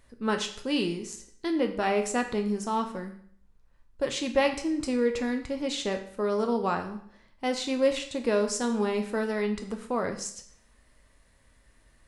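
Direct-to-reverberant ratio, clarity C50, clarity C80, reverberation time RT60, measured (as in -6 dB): 5.0 dB, 10.0 dB, 13.5 dB, 0.60 s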